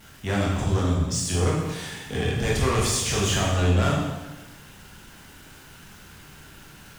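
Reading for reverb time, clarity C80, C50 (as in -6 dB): 1.1 s, 4.0 dB, 1.5 dB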